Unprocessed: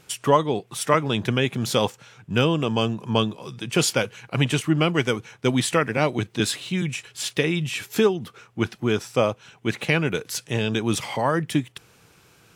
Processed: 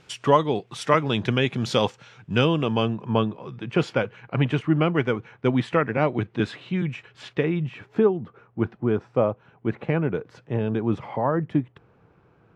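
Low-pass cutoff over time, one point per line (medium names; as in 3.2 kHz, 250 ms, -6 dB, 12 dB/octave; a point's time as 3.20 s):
2.40 s 4.8 kHz
3.18 s 1.9 kHz
7.24 s 1.9 kHz
7.85 s 1.1 kHz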